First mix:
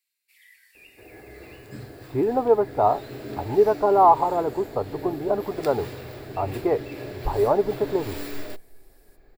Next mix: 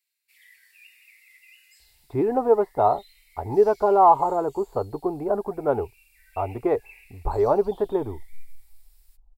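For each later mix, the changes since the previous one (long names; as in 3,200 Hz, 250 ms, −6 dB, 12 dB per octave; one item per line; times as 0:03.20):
second sound: muted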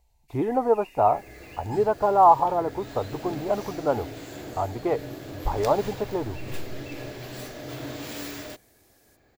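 speech: entry −1.80 s
second sound: unmuted
master: add thirty-one-band graphic EQ 400 Hz −7 dB, 3,150 Hz +4 dB, 6,300 Hz +11 dB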